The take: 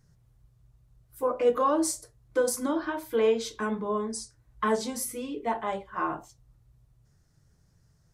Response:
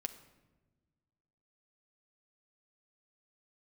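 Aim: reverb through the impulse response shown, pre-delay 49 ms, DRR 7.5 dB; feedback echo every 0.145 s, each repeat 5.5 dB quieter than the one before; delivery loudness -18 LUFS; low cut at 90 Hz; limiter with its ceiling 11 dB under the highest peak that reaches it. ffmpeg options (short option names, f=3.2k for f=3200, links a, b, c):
-filter_complex "[0:a]highpass=90,alimiter=level_in=0.5dB:limit=-24dB:level=0:latency=1,volume=-0.5dB,aecho=1:1:145|290|435|580|725|870|1015:0.531|0.281|0.149|0.079|0.0419|0.0222|0.0118,asplit=2[a][b];[1:a]atrim=start_sample=2205,adelay=49[c];[b][c]afir=irnorm=-1:irlink=0,volume=-6dB[d];[a][d]amix=inputs=2:normalize=0,volume=14dB"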